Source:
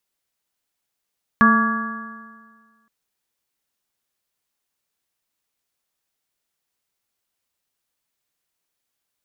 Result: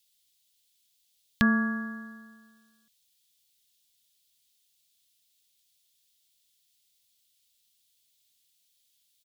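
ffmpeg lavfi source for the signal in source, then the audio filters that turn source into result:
-f lavfi -i "aevalsrc='0.224*pow(10,-3*t/1.64)*sin(2*PI*221.36*t)+0.0335*pow(10,-3*t/1.64)*sin(2*PI*444.91*t)+0.0282*pow(10,-3*t/1.64)*sin(2*PI*672.77*t)+0.0299*pow(10,-3*t/1.64)*sin(2*PI*907.04*t)+0.251*pow(10,-3*t/1.64)*sin(2*PI*1149.68*t)+0.0596*pow(10,-3*t/1.64)*sin(2*PI*1402.55*t)+0.178*pow(10,-3*t/1.64)*sin(2*PI*1667.39*t)':d=1.47:s=44100"
-af "firequalizer=gain_entry='entry(130,0);entry(350,-11);entry(580,-5);entry(1100,-18);entry(1900,-4);entry(3400,13);entry(5600,9)':delay=0.05:min_phase=1"

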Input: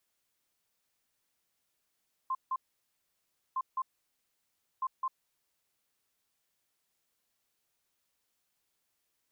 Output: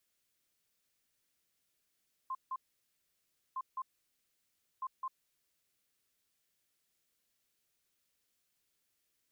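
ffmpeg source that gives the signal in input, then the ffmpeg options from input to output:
-f lavfi -i "aevalsrc='0.0355*sin(2*PI*1050*t)*clip(min(mod(mod(t,1.26),0.21),0.05-mod(mod(t,1.26),0.21))/0.005,0,1)*lt(mod(t,1.26),0.42)':d=3.78:s=44100"
-af "equalizer=f=890:t=o:w=0.97:g=-7.5"

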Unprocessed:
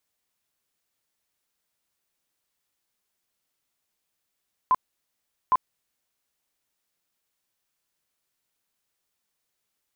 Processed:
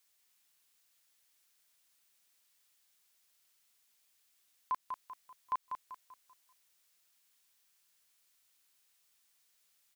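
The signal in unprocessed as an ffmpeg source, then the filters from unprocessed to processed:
-f lavfi -i "aevalsrc='0.168*sin(2*PI*1020*mod(t,0.81))*lt(mod(t,0.81),37/1020)':d=1.62:s=44100"
-af "tiltshelf=f=1100:g=-6.5,alimiter=level_in=1.5:limit=0.0631:level=0:latency=1:release=193,volume=0.668,aecho=1:1:194|388|582|776|970:0.473|0.189|0.0757|0.0303|0.0121"

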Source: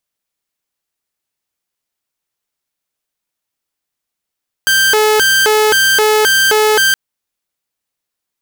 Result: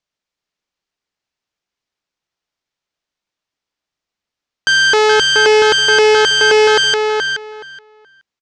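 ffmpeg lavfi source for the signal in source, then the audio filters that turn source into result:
-f lavfi -i "aevalsrc='0.501*(2*mod((999.5*t+570.5/1.9*(0.5-abs(mod(1.9*t,1)-0.5))),1)-1)':d=2.27:s=44100"
-filter_complex "[0:a]lowpass=f=6200:w=0.5412,lowpass=f=6200:w=1.3066,asplit=2[s0][s1];[s1]adelay=424,lowpass=f=4000:p=1,volume=0.596,asplit=2[s2][s3];[s3]adelay=424,lowpass=f=4000:p=1,volume=0.18,asplit=2[s4][s5];[s5]adelay=424,lowpass=f=4000:p=1,volume=0.18[s6];[s2][s4][s6]amix=inputs=3:normalize=0[s7];[s0][s7]amix=inputs=2:normalize=0"

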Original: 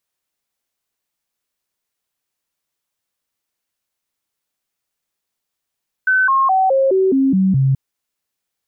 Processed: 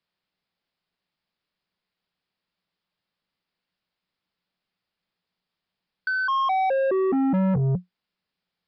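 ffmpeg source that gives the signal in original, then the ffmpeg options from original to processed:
-f lavfi -i "aevalsrc='0.282*clip(min(mod(t,0.21),0.21-mod(t,0.21))/0.005,0,1)*sin(2*PI*1520*pow(2,-floor(t/0.21)/2)*mod(t,0.21))':d=1.68:s=44100"
-filter_complex "[0:a]equalizer=f=180:t=o:w=0.29:g=13.5,acrossover=split=81|250|1000[s0][s1][s2][s3];[s0]acompressor=threshold=0.0224:ratio=4[s4];[s1]acompressor=threshold=0.224:ratio=4[s5];[s2]acompressor=threshold=0.141:ratio=4[s6];[s3]acompressor=threshold=0.0316:ratio=4[s7];[s4][s5][s6][s7]amix=inputs=4:normalize=0,aresample=11025,asoftclip=type=tanh:threshold=0.1,aresample=44100"

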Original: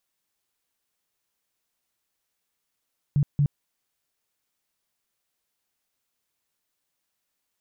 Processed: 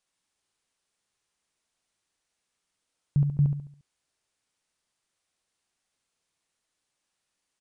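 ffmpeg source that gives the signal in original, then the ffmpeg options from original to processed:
-f lavfi -i "aevalsrc='0.141*sin(2*PI*144*mod(t,0.23))*lt(mod(t,0.23),10/144)':d=0.46:s=44100"
-filter_complex "[0:a]asplit=2[s0][s1];[s1]aecho=0:1:70|140|210|280|350:0.501|0.2|0.0802|0.0321|0.0128[s2];[s0][s2]amix=inputs=2:normalize=0,aresample=22050,aresample=44100"

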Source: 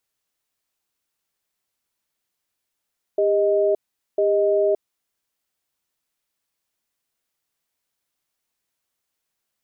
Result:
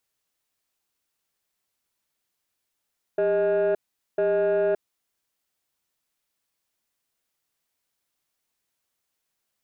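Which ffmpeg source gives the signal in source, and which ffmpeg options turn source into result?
-f lavfi -i "aevalsrc='0.119*(sin(2*PI*401*t)+sin(2*PI*624*t))*clip(min(mod(t,1),0.57-mod(t,1))/0.005,0,1)':d=1.83:s=44100"
-af "asoftclip=type=tanh:threshold=0.126"

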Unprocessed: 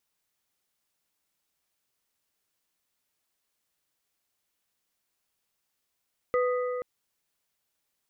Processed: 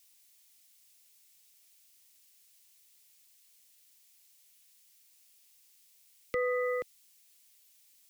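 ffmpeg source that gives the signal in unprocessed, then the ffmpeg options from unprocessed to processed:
-f lavfi -i "aevalsrc='0.0794*pow(10,-3*t/3.24)*sin(2*PI*497*t)+0.0376*pow(10,-3*t/2.461)*sin(2*PI*1242.5*t)+0.0178*pow(10,-3*t/2.138)*sin(2*PI*1988*t)':d=0.48:s=44100"
-filter_complex "[0:a]acrossover=split=150|390[s0][s1][s2];[s2]alimiter=level_in=1.58:limit=0.0631:level=0:latency=1,volume=0.631[s3];[s0][s1][s3]amix=inputs=3:normalize=0,aexciter=amount=2.2:drive=9.2:freq=2000"

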